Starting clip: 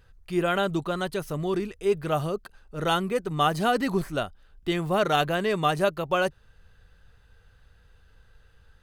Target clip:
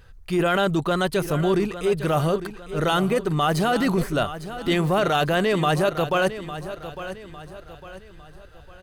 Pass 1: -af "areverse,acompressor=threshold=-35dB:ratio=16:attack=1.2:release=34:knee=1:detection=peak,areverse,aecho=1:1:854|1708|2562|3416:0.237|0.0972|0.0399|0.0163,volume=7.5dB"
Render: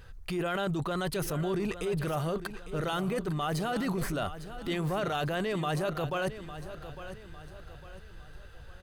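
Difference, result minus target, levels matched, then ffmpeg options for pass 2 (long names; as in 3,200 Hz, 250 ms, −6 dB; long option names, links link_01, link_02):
downward compressor: peak gain reduction +11 dB
-af "areverse,acompressor=threshold=-23.5dB:ratio=16:attack=1.2:release=34:knee=1:detection=peak,areverse,aecho=1:1:854|1708|2562|3416:0.237|0.0972|0.0399|0.0163,volume=7.5dB"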